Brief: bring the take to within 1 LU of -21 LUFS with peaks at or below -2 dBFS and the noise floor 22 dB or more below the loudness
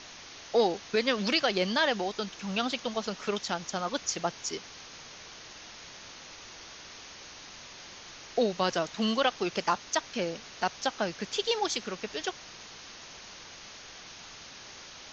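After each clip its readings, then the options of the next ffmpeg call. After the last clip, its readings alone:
noise floor -48 dBFS; noise floor target -53 dBFS; loudness -30.5 LUFS; peak -12.0 dBFS; loudness target -21.0 LUFS
-> -af "afftdn=nr=6:nf=-48"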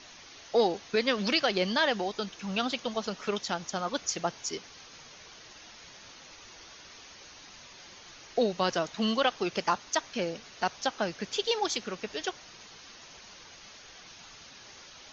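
noise floor -51 dBFS; noise floor target -53 dBFS
-> -af "afftdn=nr=6:nf=-51"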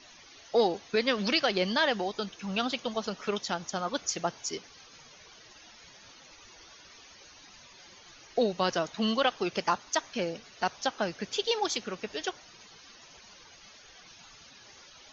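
noise floor -54 dBFS; loudness -30.5 LUFS; peak -12.0 dBFS; loudness target -21.0 LUFS
-> -af "volume=9.5dB"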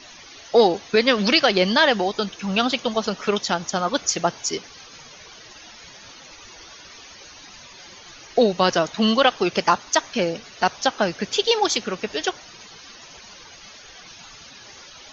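loudness -21.0 LUFS; peak -2.5 dBFS; noise floor -44 dBFS

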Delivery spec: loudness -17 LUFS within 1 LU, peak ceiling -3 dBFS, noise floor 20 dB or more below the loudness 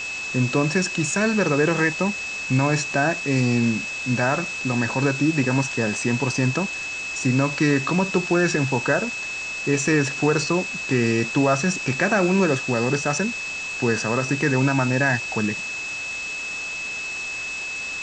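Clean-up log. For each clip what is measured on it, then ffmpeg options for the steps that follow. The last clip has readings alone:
steady tone 2600 Hz; tone level -28 dBFS; noise floor -30 dBFS; noise floor target -42 dBFS; loudness -22.0 LUFS; peak -7.0 dBFS; loudness target -17.0 LUFS
-> -af "bandreject=f=2.6k:w=30"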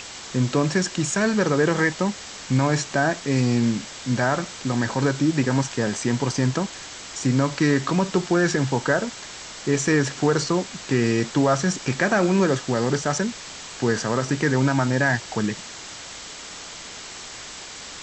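steady tone none; noise floor -38 dBFS; noise floor target -43 dBFS
-> -af "afftdn=nr=6:nf=-38"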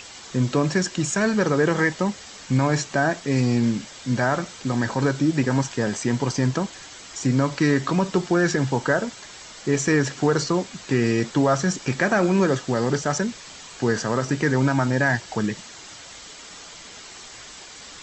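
noise floor -42 dBFS; noise floor target -43 dBFS
-> -af "afftdn=nr=6:nf=-42"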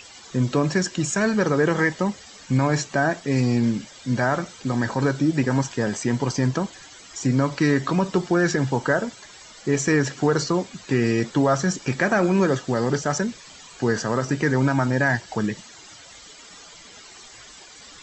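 noise floor -45 dBFS; loudness -23.0 LUFS; peak -8.0 dBFS; loudness target -17.0 LUFS
-> -af "volume=6dB,alimiter=limit=-3dB:level=0:latency=1"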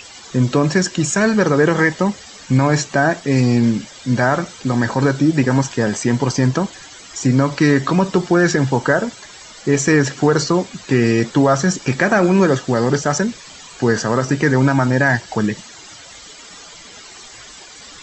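loudness -17.0 LUFS; peak -3.0 dBFS; noise floor -39 dBFS

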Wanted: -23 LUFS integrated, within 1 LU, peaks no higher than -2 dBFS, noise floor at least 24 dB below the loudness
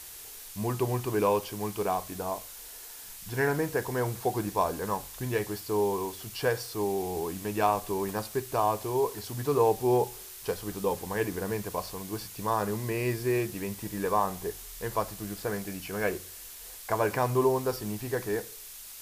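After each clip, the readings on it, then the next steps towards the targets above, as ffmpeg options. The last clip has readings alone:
noise floor -45 dBFS; noise floor target -55 dBFS; loudness -30.5 LUFS; peak -11.5 dBFS; loudness target -23.0 LUFS
-> -af "afftdn=nr=10:nf=-45"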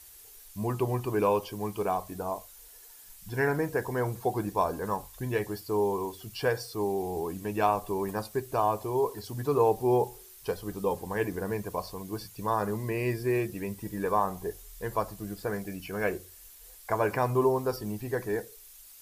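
noise floor -51 dBFS; noise floor target -55 dBFS
-> -af "afftdn=nr=6:nf=-51"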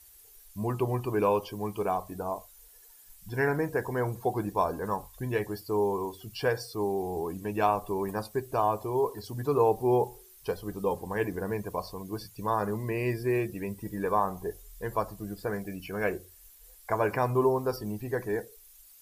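noise floor -55 dBFS; loudness -30.5 LUFS; peak -11.5 dBFS; loudness target -23.0 LUFS
-> -af "volume=7.5dB"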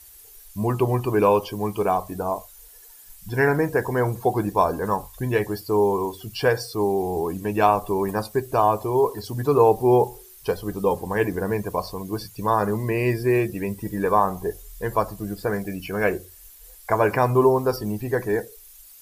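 loudness -23.0 LUFS; peak -4.0 dBFS; noise floor -47 dBFS

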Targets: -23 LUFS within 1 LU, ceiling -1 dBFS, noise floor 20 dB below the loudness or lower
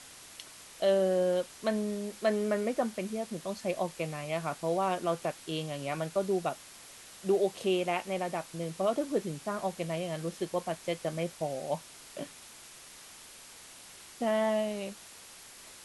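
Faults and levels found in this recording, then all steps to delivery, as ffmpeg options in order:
noise floor -51 dBFS; noise floor target -53 dBFS; loudness -32.5 LUFS; peak -15.5 dBFS; loudness target -23.0 LUFS
-> -af "afftdn=nr=6:nf=-51"
-af "volume=9.5dB"

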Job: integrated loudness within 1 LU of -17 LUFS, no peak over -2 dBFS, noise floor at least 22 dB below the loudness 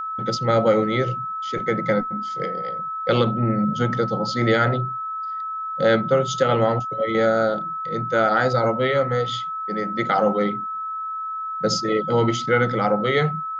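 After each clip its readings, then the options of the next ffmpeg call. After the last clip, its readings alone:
steady tone 1300 Hz; tone level -26 dBFS; loudness -22.0 LUFS; peak -6.5 dBFS; loudness target -17.0 LUFS
-> -af "bandreject=f=1.3k:w=30"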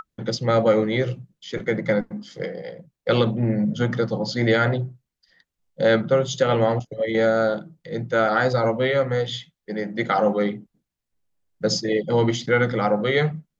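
steady tone none; loudness -22.5 LUFS; peak -6.5 dBFS; loudness target -17.0 LUFS
-> -af "volume=5.5dB,alimiter=limit=-2dB:level=0:latency=1"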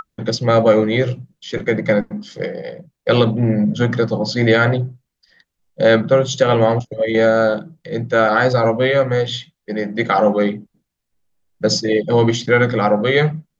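loudness -17.0 LUFS; peak -2.0 dBFS; noise floor -78 dBFS

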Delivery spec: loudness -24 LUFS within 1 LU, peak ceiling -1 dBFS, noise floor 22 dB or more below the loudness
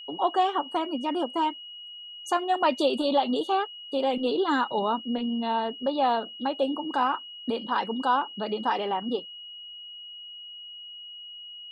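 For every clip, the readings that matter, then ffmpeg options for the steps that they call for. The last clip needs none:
steady tone 2900 Hz; tone level -40 dBFS; loudness -27.0 LUFS; peak -11.5 dBFS; loudness target -24.0 LUFS
-> -af "bandreject=f=2.9k:w=30"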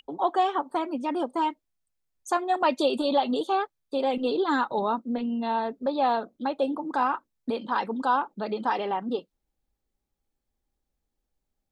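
steady tone none; loudness -27.5 LUFS; peak -11.5 dBFS; loudness target -24.0 LUFS
-> -af "volume=3.5dB"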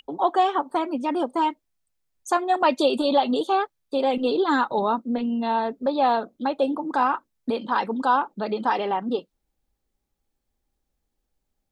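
loudness -24.0 LUFS; peak -8.0 dBFS; noise floor -79 dBFS

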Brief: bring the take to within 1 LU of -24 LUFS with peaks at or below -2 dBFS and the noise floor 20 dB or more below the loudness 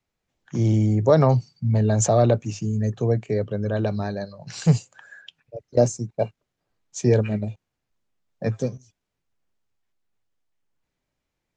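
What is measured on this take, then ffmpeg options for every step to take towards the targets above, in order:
loudness -22.5 LUFS; peak -5.0 dBFS; loudness target -24.0 LUFS
-> -af "volume=-1.5dB"

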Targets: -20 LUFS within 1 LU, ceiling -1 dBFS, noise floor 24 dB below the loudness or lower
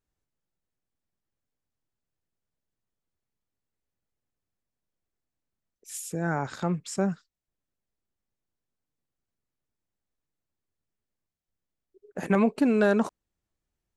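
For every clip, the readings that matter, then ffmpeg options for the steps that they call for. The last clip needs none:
loudness -26.5 LUFS; peak -9.5 dBFS; loudness target -20.0 LUFS
-> -af "volume=6.5dB"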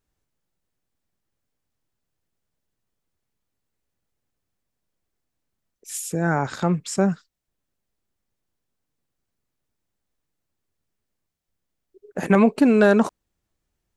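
loudness -20.5 LUFS; peak -3.0 dBFS; noise floor -81 dBFS

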